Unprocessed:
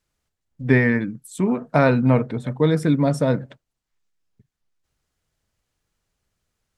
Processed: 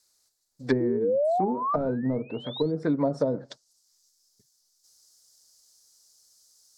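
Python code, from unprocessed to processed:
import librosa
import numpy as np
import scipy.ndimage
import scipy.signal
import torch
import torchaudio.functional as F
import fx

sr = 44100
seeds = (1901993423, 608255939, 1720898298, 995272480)

y = fx.bass_treble(x, sr, bass_db=-15, treble_db=8)
y = fx.spec_paint(y, sr, seeds[0], shape='rise', start_s=0.8, length_s=1.92, low_hz=330.0, high_hz=4600.0, level_db=-23.0)
y = np.clip(10.0 ** (12.0 / 20.0) * y, -1.0, 1.0) / 10.0 ** (12.0 / 20.0)
y = fx.env_lowpass_down(y, sr, base_hz=340.0, full_db=-17.0)
y = fx.high_shelf_res(y, sr, hz=3600.0, db=fx.steps((0.0, 6.0), (3.19, 12.0)), q=3.0)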